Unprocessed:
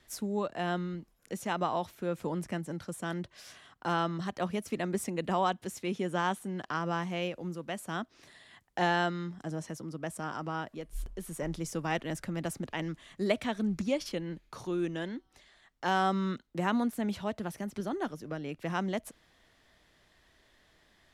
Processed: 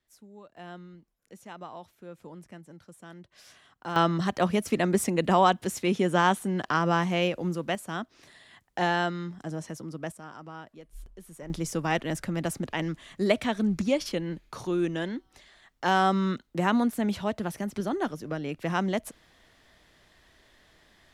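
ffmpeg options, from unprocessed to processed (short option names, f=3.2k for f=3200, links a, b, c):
-af "asetnsamples=n=441:p=0,asendcmd='0.57 volume volume -11dB;3.32 volume volume -3dB;3.96 volume volume 8dB;7.75 volume volume 2dB;10.12 volume volume -7dB;11.5 volume volume 5dB',volume=-17dB"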